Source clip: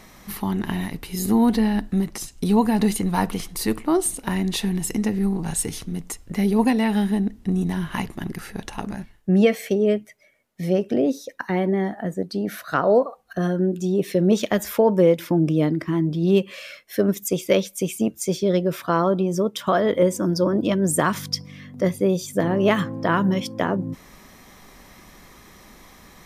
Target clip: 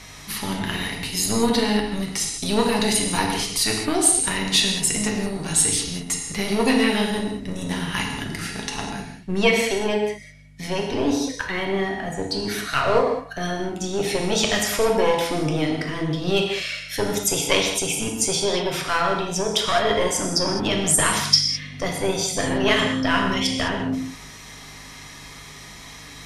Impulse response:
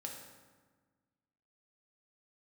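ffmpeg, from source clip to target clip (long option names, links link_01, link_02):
-filter_complex "[0:a]equalizer=frequency=4300:width=0.31:gain=12.5,acrossover=split=1900[link_01][link_02];[link_01]aeval=exprs='clip(val(0),-1,0.0422)':channel_layout=same[link_03];[link_03][link_02]amix=inputs=2:normalize=0,aeval=exprs='val(0)+0.00708*(sin(2*PI*50*n/s)+sin(2*PI*2*50*n/s)/2+sin(2*PI*3*50*n/s)/3+sin(2*PI*4*50*n/s)/4+sin(2*PI*5*50*n/s)/5)':channel_layout=same[link_04];[1:a]atrim=start_sample=2205,afade=type=out:start_time=0.16:duration=0.01,atrim=end_sample=7497,asetrate=22932,aresample=44100[link_05];[link_04][link_05]afir=irnorm=-1:irlink=0,volume=-1.5dB"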